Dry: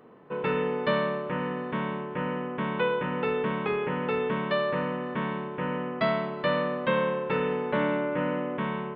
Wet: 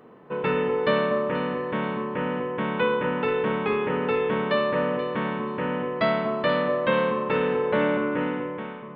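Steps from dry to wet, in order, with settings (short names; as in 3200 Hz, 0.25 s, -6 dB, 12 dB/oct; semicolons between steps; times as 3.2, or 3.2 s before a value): ending faded out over 0.82 s; echo with dull and thin repeats by turns 0.241 s, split 1300 Hz, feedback 52%, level -7 dB; gain +3 dB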